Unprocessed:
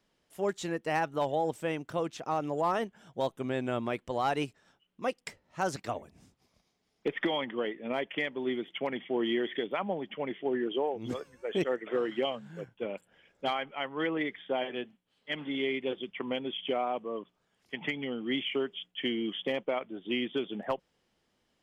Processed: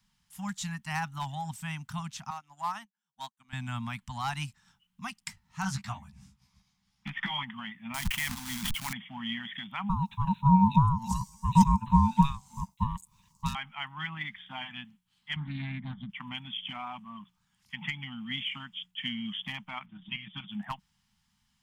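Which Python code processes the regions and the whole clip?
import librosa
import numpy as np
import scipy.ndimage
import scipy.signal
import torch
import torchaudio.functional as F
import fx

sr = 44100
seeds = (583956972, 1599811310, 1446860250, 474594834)

y = fx.chain(x, sr, fx.highpass(hz=330.0, slope=12),
    fx.upward_expand(threshold_db=-48.0, expansion=2.5), at=(2.3, 3.53))
y = fx.chain(y, sr, fx.high_shelf(hz=6400.0, db=-8.0),
    fx.doubler(ms=15.0, db=-2.5), at=(5.62, 7.43))
y = fx.chain(y, sr, fx.quant_companded(bits=4),
    fx.backlash(play_db=-49.5),
    fx.sustainer(db_per_s=25.0), at=(7.94, 8.93))
y = fx.chain(y, sr, fx.curve_eq(hz=(110.0, 160.0, 230.0, 370.0, 1300.0, 2100.0, 3400.0, 6000.0), db=(0, -20, -8, 13, -22, -8, -2, 14)),
    fx.ring_mod(carrier_hz=560.0), at=(9.89, 13.55))
y = fx.chain(y, sr, fx.savgol(points=41),
    fx.low_shelf(hz=370.0, db=10.5),
    fx.doppler_dist(depth_ms=0.15), at=(15.36, 16.1))
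y = fx.chain(y, sr, fx.lowpass(hz=3400.0, slope=12),
    fx.level_steps(step_db=10),
    fx.comb(ms=6.3, depth=0.91), at=(19.86, 20.48))
y = scipy.signal.sosfilt(scipy.signal.cheby1(3, 1.0, [210.0, 880.0], 'bandstop', fs=sr, output='sos'), y)
y = fx.bass_treble(y, sr, bass_db=7, treble_db=6)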